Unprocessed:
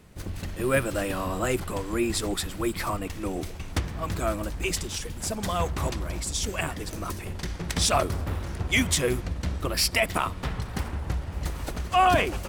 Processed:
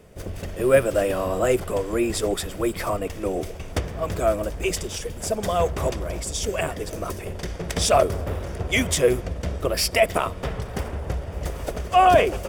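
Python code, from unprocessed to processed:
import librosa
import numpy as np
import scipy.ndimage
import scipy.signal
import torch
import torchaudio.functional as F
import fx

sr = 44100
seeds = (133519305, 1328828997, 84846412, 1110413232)

y = fx.band_shelf(x, sr, hz=520.0, db=8.5, octaves=1.0)
y = fx.notch(y, sr, hz=4100.0, q=9.3)
y = y * 10.0 ** (1.0 / 20.0)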